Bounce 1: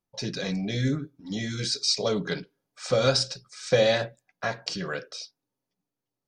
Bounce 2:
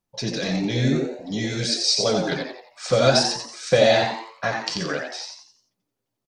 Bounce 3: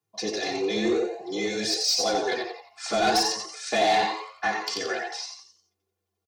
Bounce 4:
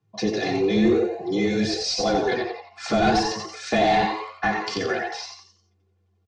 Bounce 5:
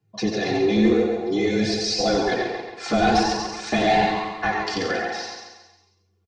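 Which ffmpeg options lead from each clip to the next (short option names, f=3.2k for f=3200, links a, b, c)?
-filter_complex "[0:a]flanger=delay=1.1:depth=8.3:regen=-65:speed=1.8:shape=sinusoidal,asplit=6[a][b][c][d][e][f];[b]adelay=88,afreqshift=110,volume=-4.5dB[g];[c]adelay=176,afreqshift=220,volume=-12.5dB[h];[d]adelay=264,afreqshift=330,volume=-20.4dB[i];[e]adelay=352,afreqshift=440,volume=-28.4dB[j];[f]adelay=440,afreqshift=550,volume=-36.3dB[k];[a][g][h][i][j][k]amix=inputs=6:normalize=0,volume=8dB"
-af "aecho=1:1:3:0.95,afreqshift=90,asoftclip=type=tanh:threshold=-12dB,volume=-4dB"
-filter_complex "[0:a]lowpass=f=7.8k:w=0.5412,lowpass=f=7.8k:w=1.3066,bass=f=250:g=14,treble=f=4k:g=-9,asplit=2[a][b];[b]acompressor=threshold=-32dB:ratio=6,volume=0dB[c];[a][c]amix=inputs=2:normalize=0"
-filter_complex "[0:a]flanger=delay=0.4:depth=3.6:regen=-54:speed=0.5:shape=sinusoidal,asplit=2[a][b];[b]aecho=0:1:137|274|411|548|685:0.422|0.194|0.0892|0.041|0.0189[c];[a][c]amix=inputs=2:normalize=0,volume=4.5dB"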